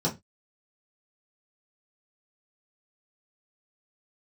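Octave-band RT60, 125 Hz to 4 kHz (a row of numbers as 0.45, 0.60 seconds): 0.30, 0.25, 0.20, 0.20, 0.20, 0.20 seconds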